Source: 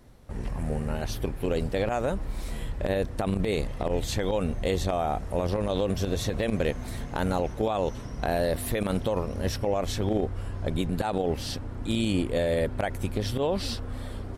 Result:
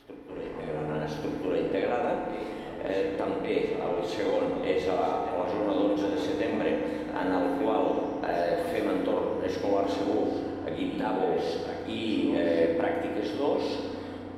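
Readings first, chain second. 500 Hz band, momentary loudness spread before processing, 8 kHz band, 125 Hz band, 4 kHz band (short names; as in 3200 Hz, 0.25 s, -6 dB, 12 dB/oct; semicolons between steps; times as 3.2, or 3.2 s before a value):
+1.5 dB, 7 LU, under -10 dB, -12.0 dB, -4.0 dB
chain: three-band isolator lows -23 dB, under 230 Hz, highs -16 dB, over 3900 Hz; reverse echo 1.148 s -10.5 dB; FDN reverb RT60 2 s, low-frequency decay 1.55×, high-frequency decay 0.65×, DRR -2 dB; gain -3.5 dB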